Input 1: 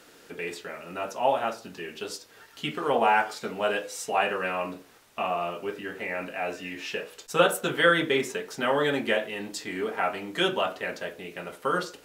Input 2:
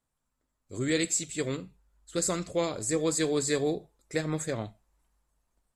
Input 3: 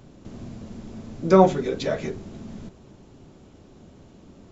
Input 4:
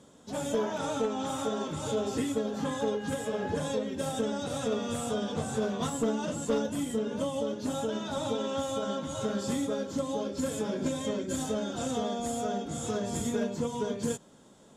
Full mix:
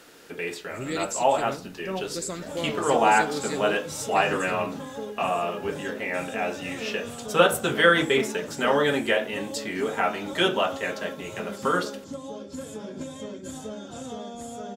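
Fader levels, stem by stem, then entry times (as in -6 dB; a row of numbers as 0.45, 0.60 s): +2.5, -4.0, -17.5, -5.0 dB; 0.00, 0.00, 0.55, 2.15 s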